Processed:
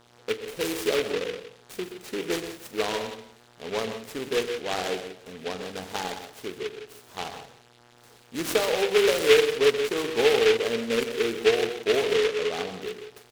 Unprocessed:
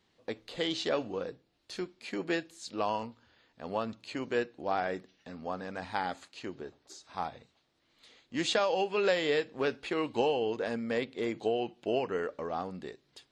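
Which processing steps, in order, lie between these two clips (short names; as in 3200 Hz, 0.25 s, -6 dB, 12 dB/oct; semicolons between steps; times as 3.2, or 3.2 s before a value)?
bell 430 Hz +14.5 dB 0.22 oct; echo 0.177 s -14 dB; buzz 120 Hz, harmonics 16, -59 dBFS -1 dB/oct; tapped delay 43/89/125/156 ms -12/-18/-10.5/-14 dB; noise-modulated delay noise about 2300 Hz, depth 0.13 ms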